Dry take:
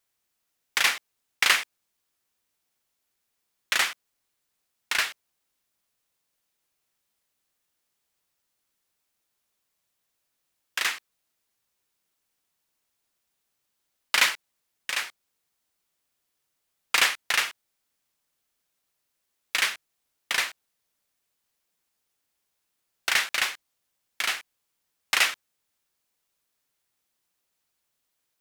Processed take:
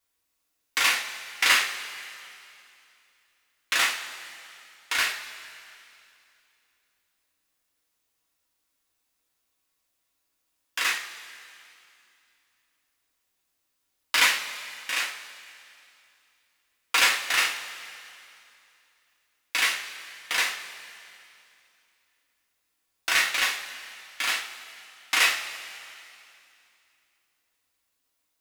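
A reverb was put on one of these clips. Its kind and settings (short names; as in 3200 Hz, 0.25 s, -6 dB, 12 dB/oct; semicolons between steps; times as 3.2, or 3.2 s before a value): two-slope reverb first 0.35 s, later 2.7 s, from -17 dB, DRR -3.5 dB; gain -3.5 dB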